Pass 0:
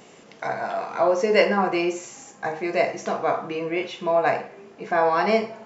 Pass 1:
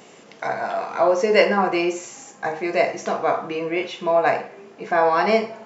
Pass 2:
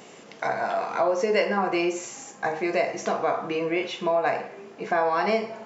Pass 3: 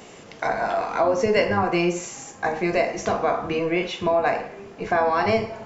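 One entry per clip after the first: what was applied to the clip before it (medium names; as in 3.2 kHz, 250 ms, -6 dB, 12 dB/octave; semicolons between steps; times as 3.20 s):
bass shelf 100 Hz -8.5 dB; trim +2.5 dB
compression 2.5:1, threshold -22 dBFS, peak gain reduction 8.5 dB
octave divider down 1 oct, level -4 dB; trim +2.5 dB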